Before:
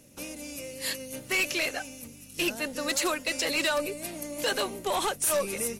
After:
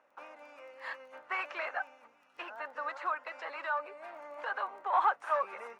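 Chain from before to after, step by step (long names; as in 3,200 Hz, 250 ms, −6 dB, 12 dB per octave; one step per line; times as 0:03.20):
0:02.41–0:04.93: downward compressor, threshold −30 dBFS, peak gain reduction 6 dB
flat-topped band-pass 1,100 Hz, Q 1.5
surface crackle 15 per second −60 dBFS
level +5.5 dB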